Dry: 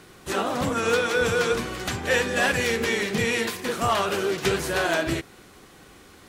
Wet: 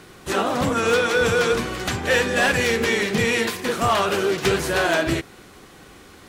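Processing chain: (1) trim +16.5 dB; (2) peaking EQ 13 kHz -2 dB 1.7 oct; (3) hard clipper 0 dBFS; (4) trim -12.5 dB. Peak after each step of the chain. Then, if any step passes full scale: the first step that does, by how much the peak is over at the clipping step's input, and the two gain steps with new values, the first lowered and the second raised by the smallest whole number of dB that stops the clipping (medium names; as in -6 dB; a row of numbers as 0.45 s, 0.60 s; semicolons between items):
+6.0 dBFS, +6.0 dBFS, 0.0 dBFS, -12.5 dBFS; step 1, 6.0 dB; step 1 +10.5 dB, step 4 -6.5 dB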